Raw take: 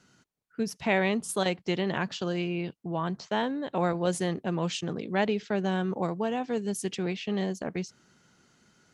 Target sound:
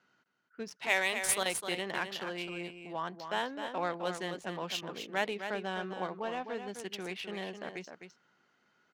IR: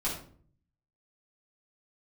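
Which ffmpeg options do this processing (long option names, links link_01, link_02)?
-filter_complex "[0:a]highpass=frequency=1100:poles=1,asettb=1/sr,asplit=3[link_01][link_02][link_03];[link_01]atrim=end=0.804[link_04];[link_02]atrim=start=0.8:end=1.38,asetpts=PTS-STARTPTS,afade=type=in:duration=0.004:curve=qsin,afade=type=out:start_time=0.576:duration=0.004:curve=qsin,aemphasis=mode=production:type=bsi[link_05];[link_03]atrim=start=1.376[link_06];[link_04][link_05]acrossfade=duration=0.004:curve1=hsin:curve2=qsin[link_07];[link_07][link_06]acrossfade=duration=0.004:curve1=qsin:curve2=hsin,adynamicsmooth=sensitivity=7.5:basefreq=2400,asplit=2[link_08][link_09];[link_09]aecho=0:1:258:0.398[link_10];[link_08][link_10]amix=inputs=2:normalize=0"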